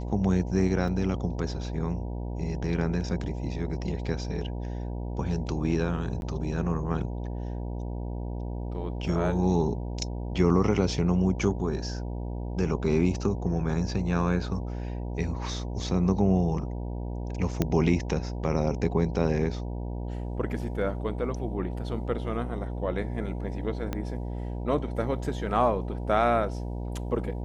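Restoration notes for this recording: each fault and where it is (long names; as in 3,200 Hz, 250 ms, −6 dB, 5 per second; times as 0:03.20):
mains buzz 60 Hz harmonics 16 −33 dBFS
0:00.88: drop-out 2.4 ms
0:06.21–0:06.22: drop-out 11 ms
0:17.62: click −11 dBFS
0:23.93: click −17 dBFS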